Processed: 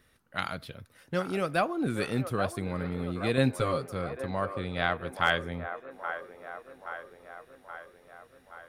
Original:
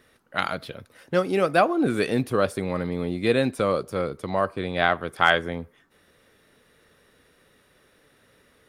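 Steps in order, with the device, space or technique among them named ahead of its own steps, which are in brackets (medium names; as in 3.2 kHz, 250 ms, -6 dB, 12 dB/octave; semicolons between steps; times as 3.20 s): 3.37–3.89 s: comb 7.4 ms, depth 97%; smiley-face EQ (bass shelf 160 Hz +8 dB; peaking EQ 420 Hz -4.5 dB 2 oct; treble shelf 10 kHz +4.5 dB); feedback echo behind a band-pass 825 ms, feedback 60%, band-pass 840 Hz, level -8 dB; trim -6 dB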